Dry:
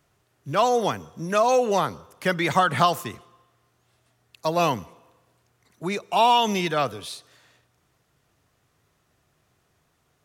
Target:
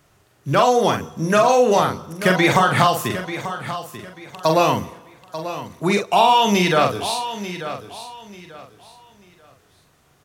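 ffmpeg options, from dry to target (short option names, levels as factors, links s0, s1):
-filter_complex "[0:a]acompressor=threshold=0.0891:ratio=6,asplit=2[s0][s1];[s1]adelay=44,volume=0.562[s2];[s0][s2]amix=inputs=2:normalize=0,aecho=1:1:889|1778|2667:0.251|0.0678|0.0183,volume=2.66"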